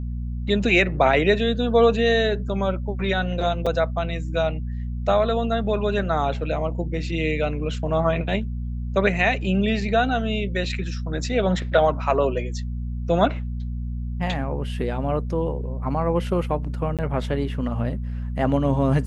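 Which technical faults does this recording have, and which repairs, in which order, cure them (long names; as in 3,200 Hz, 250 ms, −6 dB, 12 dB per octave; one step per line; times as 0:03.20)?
mains hum 60 Hz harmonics 4 −28 dBFS
0:03.66–0:03.67: drop-out 5.4 ms
0:16.97–0:16.99: drop-out 17 ms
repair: hum removal 60 Hz, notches 4
repair the gap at 0:03.66, 5.4 ms
repair the gap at 0:16.97, 17 ms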